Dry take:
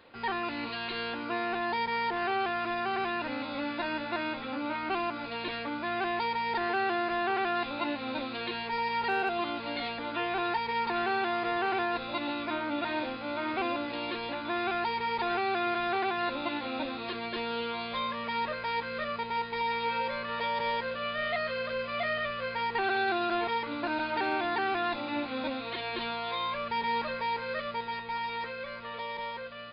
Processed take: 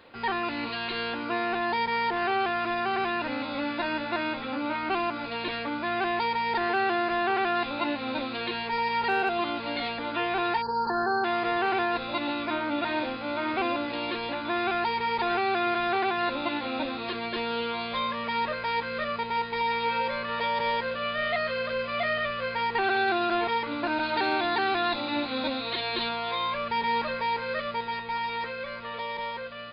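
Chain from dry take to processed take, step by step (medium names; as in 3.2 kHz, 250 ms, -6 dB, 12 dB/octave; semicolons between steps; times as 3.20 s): 10.62–11.24 s: spectral selection erased 1.8–4.1 kHz; 24.03–26.09 s: peaking EQ 4 kHz +8.5 dB 0.33 oct; trim +3.5 dB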